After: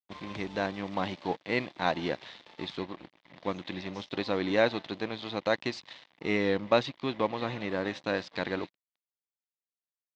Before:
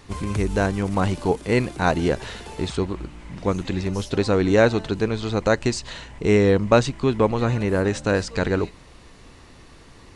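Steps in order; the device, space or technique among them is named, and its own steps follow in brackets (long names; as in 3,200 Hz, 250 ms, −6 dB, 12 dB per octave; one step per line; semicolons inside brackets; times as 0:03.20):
blown loudspeaker (dead-zone distortion −35.5 dBFS; loudspeaker in its box 220–4,800 Hz, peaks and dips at 230 Hz −3 dB, 420 Hz −8 dB, 1,400 Hz −5 dB, 2,000 Hz +3 dB, 3,600 Hz +6 dB)
level −5.5 dB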